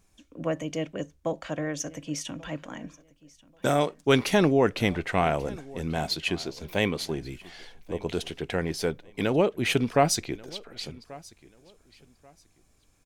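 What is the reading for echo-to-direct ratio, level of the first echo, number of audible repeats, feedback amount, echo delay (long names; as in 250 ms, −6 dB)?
−22.0 dB, −22.0 dB, 2, 24%, 1,136 ms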